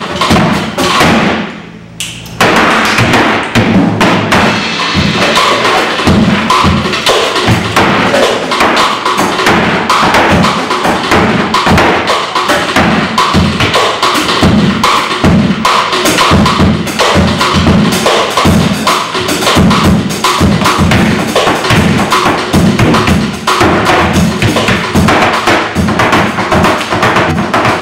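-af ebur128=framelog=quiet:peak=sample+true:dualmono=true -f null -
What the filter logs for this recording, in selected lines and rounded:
Integrated loudness:
  I:          -5.1 LUFS
  Threshold: -15.2 LUFS
Loudness range:
  LRA:         0.8 LU
  Threshold: -25.1 LUFS
  LRA low:    -5.5 LUFS
  LRA high:   -4.7 LUFS
Sample peak:
  Peak:       -2.3 dBFS
True peak:
  Peak:       -0.9 dBFS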